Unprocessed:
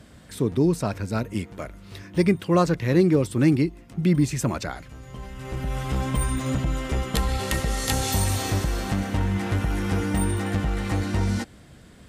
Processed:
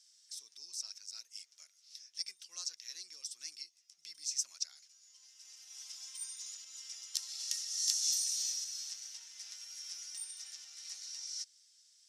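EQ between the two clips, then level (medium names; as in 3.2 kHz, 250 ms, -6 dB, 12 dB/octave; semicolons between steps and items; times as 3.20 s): ladder band-pass 5.9 kHz, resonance 75%; +4.5 dB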